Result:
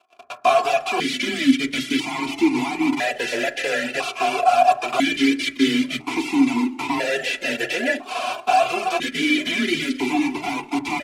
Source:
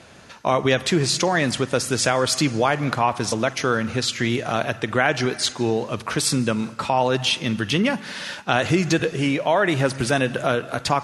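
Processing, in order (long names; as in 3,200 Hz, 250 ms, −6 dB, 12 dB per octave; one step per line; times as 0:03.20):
spectral envelope flattened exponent 0.3
transient designer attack +1 dB, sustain −6 dB
fuzz pedal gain 34 dB, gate −41 dBFS
reversed playback
upward compression, threshold −18 dBFS
reversed playback
comb filter 3 ms, depth 61%
echo with shifted repeats 119 ms, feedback 55%, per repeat +89 Hz, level −17 dB
pitch vibrato 0.51 Hz 6.9 cents
frequency shifter +25 Hz
noise gate −32 dBFS, range −20 dB
reverb reduction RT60 0.98 s
on a send at −7 dB: convolution reverb RT60 0.40 s, pre-delay 4 ms
on the sum: formant filter that steps through the vowels 1 Hz
level +7.5 dB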